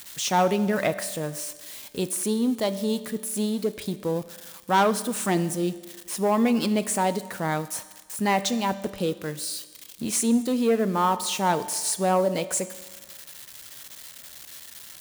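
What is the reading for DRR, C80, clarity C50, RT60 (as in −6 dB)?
12.0 dB, 15.5 dB, 14.5 dB, 1.4 s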